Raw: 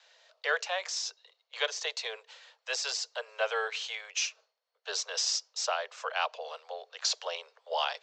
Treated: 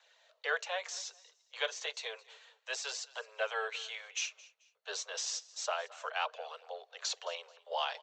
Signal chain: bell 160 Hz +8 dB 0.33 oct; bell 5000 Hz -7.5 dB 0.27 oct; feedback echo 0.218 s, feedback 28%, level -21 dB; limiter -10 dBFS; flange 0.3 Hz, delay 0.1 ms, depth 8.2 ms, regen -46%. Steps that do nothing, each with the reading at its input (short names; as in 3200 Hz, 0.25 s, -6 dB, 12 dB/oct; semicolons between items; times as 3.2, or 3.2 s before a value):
bell 160 Hz: input band starts at 360 Hz; limiter -10 dBFS: input peak -12.5 dBFS